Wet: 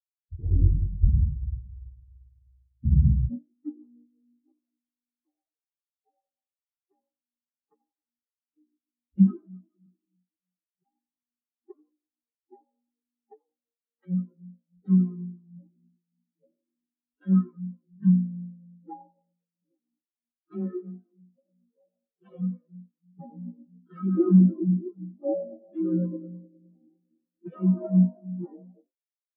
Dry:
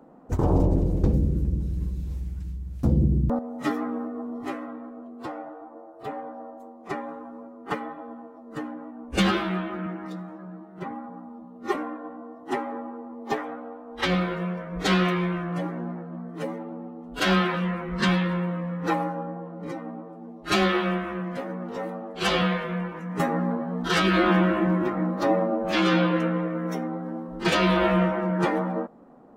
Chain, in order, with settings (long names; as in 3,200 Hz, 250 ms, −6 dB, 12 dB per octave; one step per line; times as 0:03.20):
echo with shifted repeats 87 ms, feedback 49%, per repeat +54 Hz, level −9 dB
every bin expanded away from the loudest bin 4 to 1